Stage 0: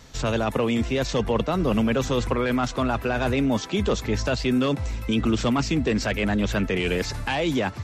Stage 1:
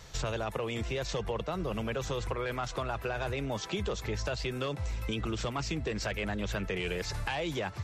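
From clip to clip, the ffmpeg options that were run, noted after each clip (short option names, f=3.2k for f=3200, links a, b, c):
-af "equalizer=f=250:w=3.9:g=-14.5,acompressor=threshold=-29dB:ratio=6,volume=-1.5dB"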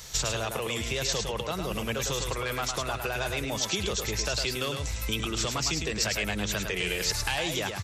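-af "crystalizer=i=4.5:c=0,aecho=1:1:106:0.531"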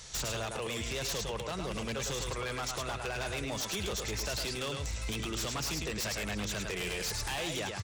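-af "aecho=1:1:696:0.0944,aresample=22050,aresample=44100,aeval=exprs='0.0562*(abs(mod(val(0)/0.0562+3,4)-2)-1)':c=same,volume=-4dB"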